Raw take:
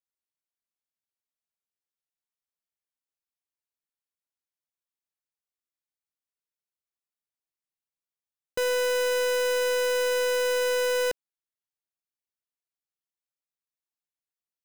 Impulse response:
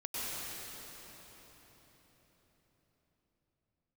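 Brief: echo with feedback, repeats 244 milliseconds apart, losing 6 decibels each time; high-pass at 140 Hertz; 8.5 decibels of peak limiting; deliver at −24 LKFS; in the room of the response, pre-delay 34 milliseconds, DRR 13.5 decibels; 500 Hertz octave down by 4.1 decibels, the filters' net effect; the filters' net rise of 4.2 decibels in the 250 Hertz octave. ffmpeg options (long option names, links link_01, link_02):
-filter_complex "[0:a]highpass=140,equalizer=frequency=250:width_type=o:gain=7.5,equalizer=frequency=500:width_type=o:gain=-5.5,alimiter=level_in=5.5dB:limit=-24dB:level=0:latency=1,volume=-5.5dB,aecho=1:1:244|488|732|976|1220|1464:0.501|0.251|0.125|0.0626|0.0313|0.0157,asplit=2[link_01][link_02];[1:a]atrim=start_sample=2205,adelay=34[link_03];[link_02][link_03]afir=irnorm=-1:irlink=0,volume=-18dB[link_04];[link_01][link_04]amix=inputs=2:normalize=0,volume=10dB"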